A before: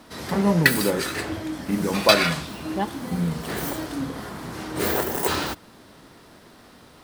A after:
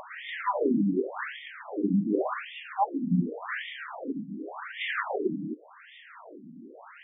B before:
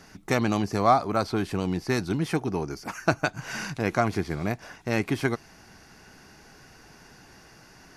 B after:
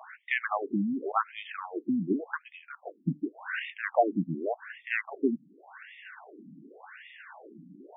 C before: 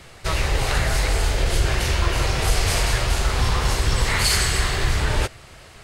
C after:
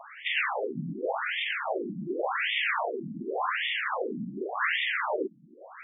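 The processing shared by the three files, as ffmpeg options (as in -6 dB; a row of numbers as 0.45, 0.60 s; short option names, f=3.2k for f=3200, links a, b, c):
-af "acompressor=mode=upward:threshold=-35dB:ratio=2.5,afftfilt=real='re*between(b*sr/1024,210*pow(2600/210,0.5+0.5*sin(2*PI*0.88*pts/sr))/1.41,210*pow(2600/210,0.5+0.5*sin(2*PI*0.88*pts/sr))*1.41)':imag='im*between(b*sr/1024,210*pow(2600/210,0.5+0.5*sin(2*PI*0.88*pts/sr))/1.41,210*pow(2600/210,0.5+0.5*sin(2*PI*0.88*pts/sr))*1.41)':win_size=1024:overlap=0.75,volume=3.5dB"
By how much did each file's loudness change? -7.0, -4.5, -8.0 LU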